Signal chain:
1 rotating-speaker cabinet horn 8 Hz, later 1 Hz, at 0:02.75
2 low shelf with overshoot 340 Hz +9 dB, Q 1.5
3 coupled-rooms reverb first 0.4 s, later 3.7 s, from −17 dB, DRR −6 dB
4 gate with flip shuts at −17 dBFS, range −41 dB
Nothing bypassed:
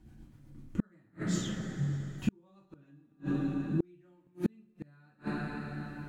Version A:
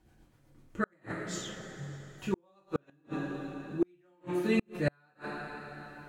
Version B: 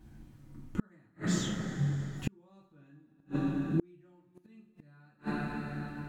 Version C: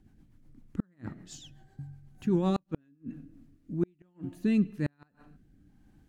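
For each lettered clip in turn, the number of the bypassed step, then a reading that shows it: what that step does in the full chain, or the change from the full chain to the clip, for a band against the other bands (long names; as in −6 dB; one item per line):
2, change in momentary loudness spread −4 LU
1, change in momentary loudness spread −10 LU
3, change in momentary loudness spread +1 LU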